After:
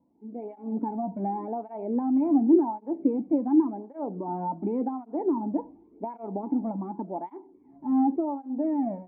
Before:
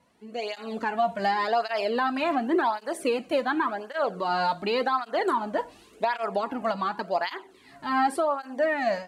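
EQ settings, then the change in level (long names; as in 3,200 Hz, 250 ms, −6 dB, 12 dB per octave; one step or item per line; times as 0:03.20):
dynamic equaliser 200 Hz, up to +7 dB, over −46 dBFS, Q 1.4
formant resonators in series u
+8.0 dB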